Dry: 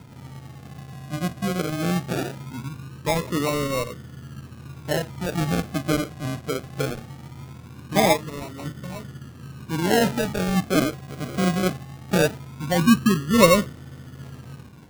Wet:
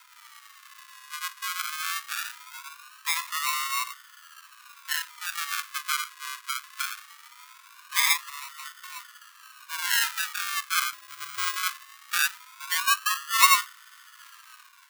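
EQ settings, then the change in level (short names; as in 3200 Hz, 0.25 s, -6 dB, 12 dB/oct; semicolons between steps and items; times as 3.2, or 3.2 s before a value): steep high-pass 1000 Hz 96 dB/oct; high shelf 9500 Hz +4.5 dB; +2.0 dB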